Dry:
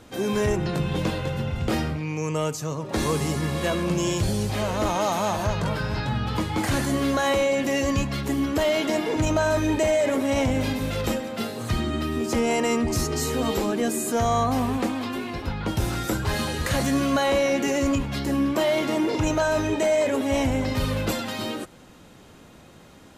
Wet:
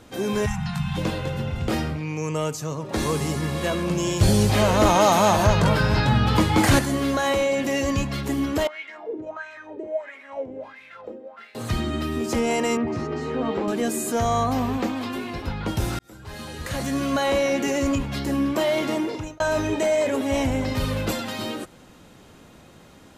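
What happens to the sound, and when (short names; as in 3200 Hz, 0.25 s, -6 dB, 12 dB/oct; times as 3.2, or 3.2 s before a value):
0.46–0.97 spectral delete 220–690 Hz
4.21–6.79 gain +7 dB
8.67–11.55 wah 1.5 Hz 370–2300 Hz, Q 5.8
12.77–13.68 BPF 130–2100 Hz
14.53–14.97 bell 9500 Hz -14 dB 0.35 oct
15.99–17.3 fade in
18.92–19.4 fade out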